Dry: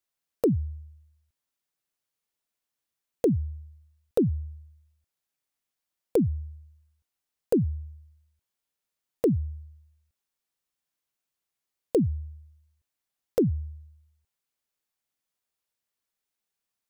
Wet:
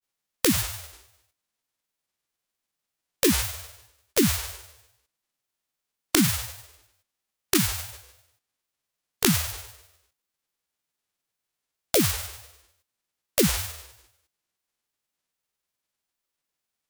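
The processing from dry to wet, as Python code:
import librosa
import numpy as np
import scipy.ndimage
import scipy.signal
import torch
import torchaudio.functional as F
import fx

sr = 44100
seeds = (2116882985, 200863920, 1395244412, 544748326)

y = fx.envelope_flatten(x, sr, power=0.1)
y = fx.granulator(y, sr, seeds[0], grain_ms=100.0, per_s=20.0, spray_ms=18.0, spread_st=7)
y = F.gain(torch.from_numpy(y), 4.5).numpy()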